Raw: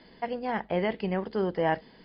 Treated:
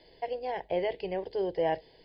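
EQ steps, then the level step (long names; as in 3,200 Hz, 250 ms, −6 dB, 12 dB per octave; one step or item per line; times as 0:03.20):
phaser with its sweep stopped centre 530 Hz, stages 4
0.0 dB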